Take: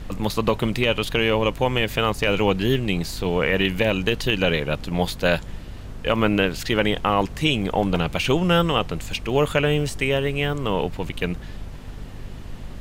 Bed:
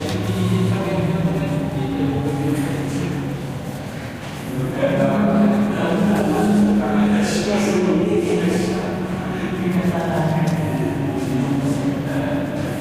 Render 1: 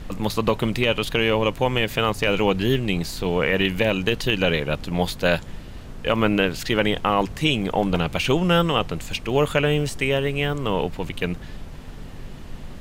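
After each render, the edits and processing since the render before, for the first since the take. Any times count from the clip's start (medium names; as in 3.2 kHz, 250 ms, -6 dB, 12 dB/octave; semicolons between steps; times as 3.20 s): de-hum 50 Hz, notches 2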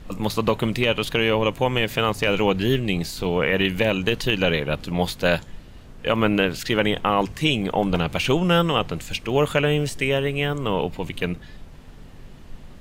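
noise print and reduce 6 dB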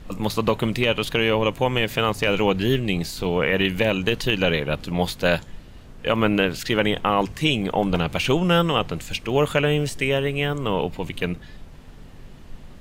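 no audible change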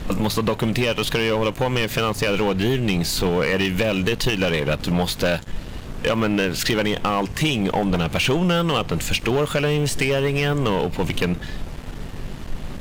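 compression 6:1, threshold -26 dBFS, peak gain reduction 11.5 dB; waveshaping leveller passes 3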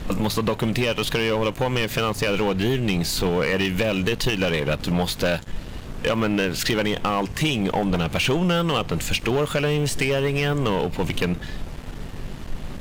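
trim -1.5 dB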